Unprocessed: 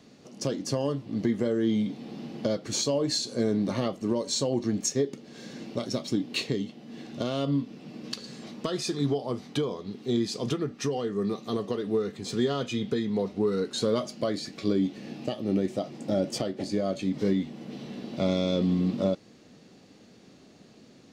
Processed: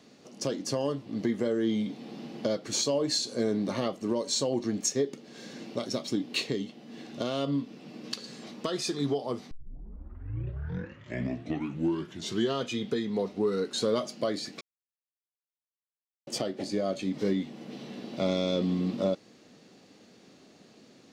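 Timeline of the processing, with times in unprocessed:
9.51 s: tape start 3.12 s
14.61–16.27 s: mute
whole clip: bass shelf 140 Hz -10.5 dB

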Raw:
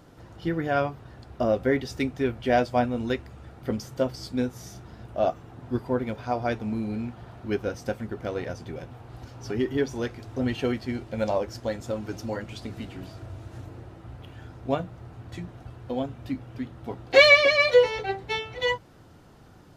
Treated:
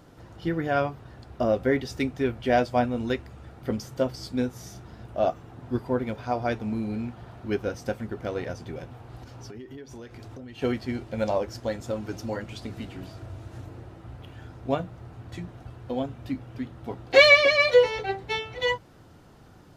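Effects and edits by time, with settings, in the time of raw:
9.16–10.62 s: compression 10:1, threshold -38 dBFS

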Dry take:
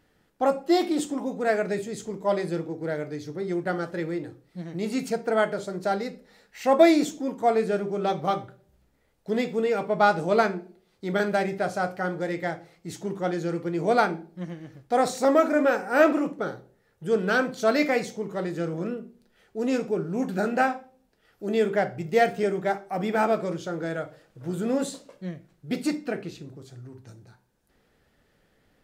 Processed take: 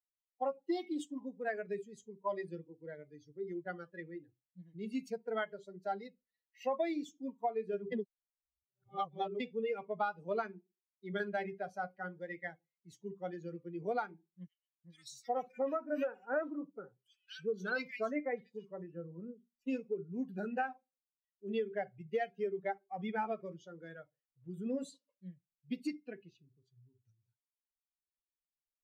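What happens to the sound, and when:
7.92–9.40 s: reverse
14.47–19.67 s: bands offset in time highs, lows 370 ms, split 2.1 kHz
whole clip: expander on every frequency bin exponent 2; three-band isolator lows -24 dB, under 210 Hz, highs -15 dB, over 4.4 kHz; compression 8:1, threshold -30 dBFS; trim -1.5 dB

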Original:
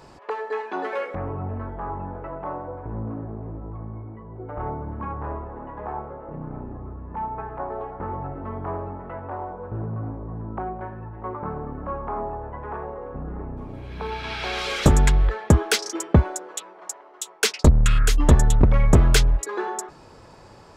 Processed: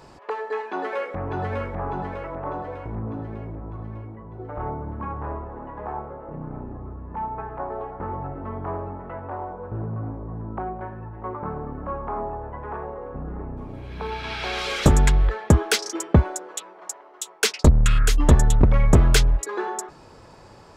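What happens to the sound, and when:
0.70–1.42 s: echo throw 600 ms, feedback 55%, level -3 dB

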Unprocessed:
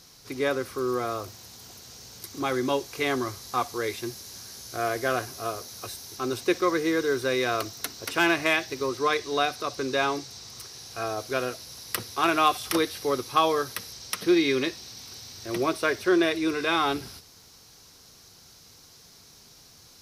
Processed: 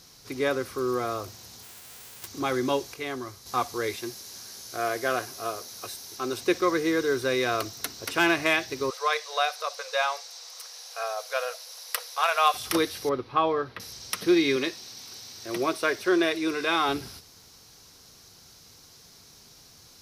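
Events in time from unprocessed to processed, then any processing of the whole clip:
1.62–2.26 s: formants flattened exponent 0.1
2.94–3.46 s: gain -7 dB
3.96–6.38 s: bass shelf 140 Hz -11.5 dB
8.90–12.54 s: brick-wall FIR high-pass 450 Hz
13.09–13.80 s: distance through air 380 m
14.56–16.89 s: high-pass 220 Hz 6 dB/octave

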